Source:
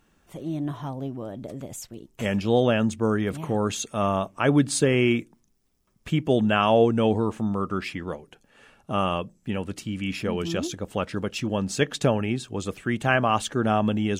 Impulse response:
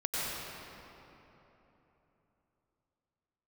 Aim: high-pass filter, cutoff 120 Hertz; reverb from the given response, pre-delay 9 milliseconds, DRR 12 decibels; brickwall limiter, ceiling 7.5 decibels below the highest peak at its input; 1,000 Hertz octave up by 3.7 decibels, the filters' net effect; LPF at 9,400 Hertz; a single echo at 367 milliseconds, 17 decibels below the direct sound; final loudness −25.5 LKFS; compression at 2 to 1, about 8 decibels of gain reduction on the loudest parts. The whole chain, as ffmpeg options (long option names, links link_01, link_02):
-filter_complex "[0:a]highpass=120,lowpass=9400,equalizer=frequency=1000:width_type=o:gain=5,acompressor=threshold=-28dB:ratio=2,alimiter=limit=-18.5dB:level=0:latency=1,aecho=1:1:367:0.141,asplit=2[link_01][link_02];[1:a]atrim=start_sample=2205,adelay=9[link_03];[link_02][link_03]afir=irnorm=-1:irlink=0,volume=-19.5dB[link_04];[link_01][link_04]amix=inputs=2:normalize=0,volume=6dB"